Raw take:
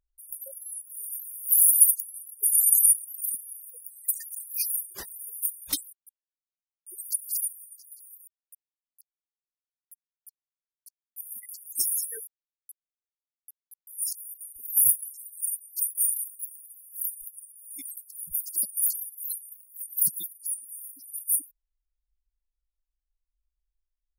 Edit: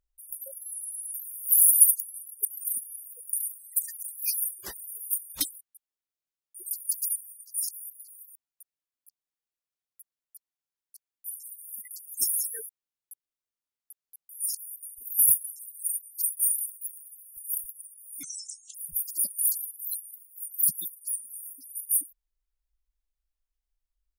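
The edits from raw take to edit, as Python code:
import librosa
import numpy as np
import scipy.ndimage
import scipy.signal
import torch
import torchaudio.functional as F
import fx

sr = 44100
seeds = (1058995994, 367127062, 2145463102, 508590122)

y = fx.edit(x, sr, fx.stutter_over(start_s=0.7, slice_s=0.11, count=4),
    fx.cut(start_s=2.45, length_s=0.57),
    fx.reverse_span(start_s=7.03, length_s=0.31),
    fx.duplicate(start_s=13.98, length_s=0.4, to_s=7.86),
    fx.duplicate(start_s=15.03, length_s=0.34, to_s=11.21),
    fx.duplicate(start_s=16.09, length_s=0.25, to_s=3.9),
    fx.reverse_span(start_s=16.95, length_s=0.27),
    fx.speed_span(start_s=17.81, length_s=0.32, speed=0.62), tone=tone)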